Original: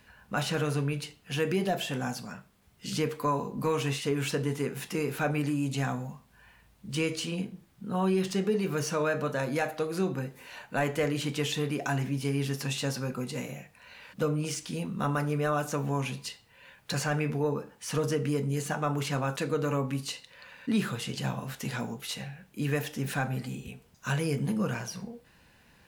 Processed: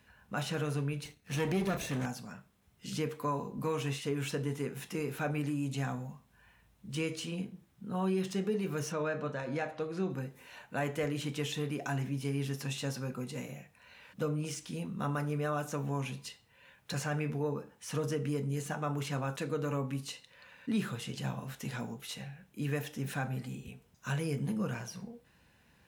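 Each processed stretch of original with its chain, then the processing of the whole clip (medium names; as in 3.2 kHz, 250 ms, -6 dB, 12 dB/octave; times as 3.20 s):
1.05–2.06 s: comb filter that takes the minimum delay 0.47 ms + waveshaping leveller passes 1
8.92–10.10 s: distance through air 86 m + de-hum 135.6 Hz, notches 29
whole clip: high-pass 45 Hz; bass shelf 210 Hz +3 dB; band-stop 4.6 kHz, Q 15; trim -6 dB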